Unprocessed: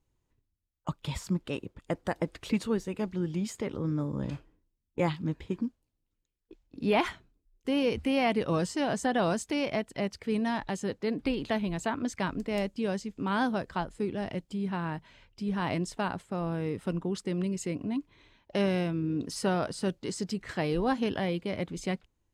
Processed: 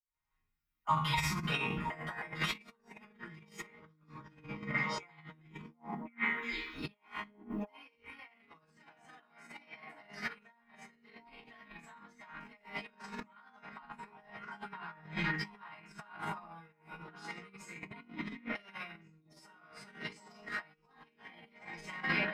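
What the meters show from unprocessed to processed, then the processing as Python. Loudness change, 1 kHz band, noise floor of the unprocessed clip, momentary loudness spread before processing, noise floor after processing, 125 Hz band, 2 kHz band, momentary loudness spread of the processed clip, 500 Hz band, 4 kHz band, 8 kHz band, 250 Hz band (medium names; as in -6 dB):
-8.0 dB, -6.5 dB, -80 dBFS, 8 LU, -74 dBFS, -10.5 dB, 0.0 dB, 22 LU, -19.0 dB, -4.5 dB, -10.5 dB, -15.5 dB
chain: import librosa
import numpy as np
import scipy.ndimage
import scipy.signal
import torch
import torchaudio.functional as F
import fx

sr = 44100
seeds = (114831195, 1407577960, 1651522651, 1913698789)

p1 = fx.fade_in_head(x, sr, length_s=2.78)
p2 = scipy.signal.sosfilt(scipy.signal.butter(2, 46.0, 'highpass', fs=sr, output='sos'), p1)
p3 = fx.high_shelf(p2, sr, hz=4300.0, db=9.0)
p4 = fx.hum_notches(p3, sr, base_hz=50, count=5)
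p5 = fx.resonator_bank(p4, sr, root=51, chord='sus4', decay_s=0.34)
p6 = p5 + fx.echo_stepped(p5, sr, ms=358, hz=260.0, octaves=1.4, feedback_pct=70, wet_db=-2.5, dry=0)
p7 = fx.room_shoebox(p6, sr, seeds[0], volume_m3=57.0, walls='mixed', distance_m=3.3)
p8 = fx.over_compress(p7, sr, threshold_db=-45.0, ratio=-0.5)
p9 = fx.graphic_eq_10(p8, sr, hz=(250, 500, 1000, 2000, 8000), db=(-5, -9, 7, 11, -9))
y = p9 * 10.0 ** (2.0 / 20.0)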